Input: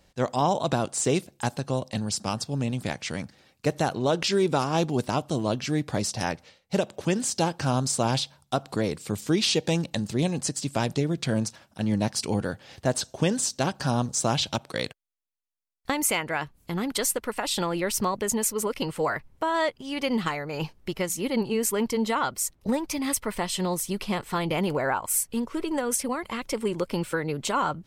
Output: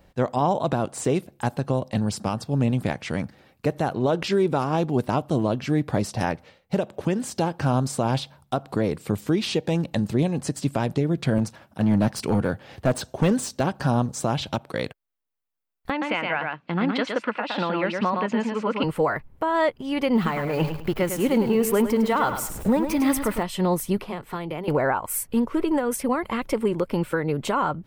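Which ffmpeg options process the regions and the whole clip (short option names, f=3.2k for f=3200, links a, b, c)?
-filter_complex "[0:a]asettb=1/sr,asplit=3[a][b][c];[a]atrim=end=11.384[d];[b]atrim=start=11.38:end=13.61,asetpts=PTS-STARTPTS,afade=t=in:d=0.004:c=qsin,afade=t=out:st=2.226:d=0.004:c=qsin,highpass=f=47:w=0.5412,highpass=f=47:w=1.3066,volume=20.5dB,asoftclip=hard,volume=-20.5dB[e];[c]atrim=start=13.606[f];[d][e]acrossfade=d=0.004:c1=hsin:c2=qsin[g];[g][f]acrossfade=d=0.004:c1=qsin:c2=hsin,asettb=1/sr,asplit=3[h][i][j];[h]atrim=end=15.904[k];[i]atrim=start=15.9:end=18.84,asetpts=PTS-STARTPTS,afade=t=in:d=0.004:c=qsin,afade=t=out:st=2.936:d=0.004:c=qsin,highpass=f=170:w=0.5412,highpass=f=170:w=1.3066,equalizer=f=400:t=q:w=4:g=-8,equalizer=f=1.5k:t=q:w=4:g=4,equalizer=f=2.6k:t=q:w=4:g=6,lowpass=f=4.4k:w=0.5412,lowpass=f=4.4k:w=1.3066,aecho=1:1:115:0.596,atrim=end_sample=129654[l];[j]atrim=start=18.836[m];[k][l]acrossfade=d=0.004:c1=hsin:c2=qsin[n];[n][m]acrossfade=d=0.004:c1=qsin:c2=hsin,asettb=1/sr,asplit=3[o][p][q];[o]atrim=end=20.154[r];[p]atrim=start=20.15:end=23.43,asetpts=PTS-STARTPTS,afade=t=in:d=0.004:c=qsin,afade=t=out:st=3.276:d=0.004:c=qsin,aeval=exprs='val(0)+0.5*0.0158*sgn(val(0))':c=same,aecho=1:1:104|208|312:0.355|0.0993|0.0278,atrim=end_sample=144648[s];[q]atrim=start=23.426[t];[r][s]acrossfade=d=0.004:c1=hsin:c2=qsin[u];[u][t]acrossfade=d=0.004:c1=qsin:c2=hsin,asettb=1/sr,asplit=3[v][w][x];[v]atrim=end=23.974[y];[w]atrim=start=23.97:end=24.68,asetpts=PTS-STARTPTS,afade=t=in:d=0.004:c=qsin,afade=t=out:st=0.706:d=0.004:c=qsin,bandreject=f=200:w=5.5,acrossover=split=150|310|1700[z][aa][ab][ac];[z]acompressor=threshold=-54dB:ratio=3[ad];[aa]acompressor=threshold=-45dB:ratio=3[ae];[ab]acompressor=threshold=-41dB:ratio=3[af];[ac]acompressor=threshold=-46dB:ratio=3[ag];[ad][ae][af][ag]amix=inputs=4:normalize=0[ah];[x]atrim=start=24.676[ai];[y][ah]acrossfade=d=0.004:c1=hsin:c2=qsin[aj];[aj][ai]acrossfade=d=0.004:c1=qsin:c2=hsin,equalizer=f=6.4k:w=0.53:g=-12.5,alimiter=limit=-19dB:level=0:latency=1:release=342,volume=6.5dB"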